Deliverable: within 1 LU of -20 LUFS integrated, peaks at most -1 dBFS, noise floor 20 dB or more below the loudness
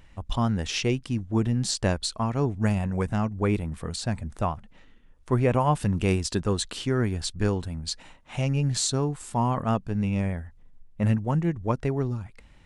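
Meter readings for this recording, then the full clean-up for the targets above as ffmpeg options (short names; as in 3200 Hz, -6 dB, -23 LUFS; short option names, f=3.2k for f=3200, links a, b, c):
loudness -27.0 LUFS; peak -10.0 dBFS; loudness target -20.0 LUFS
-> -af "volume=7dB"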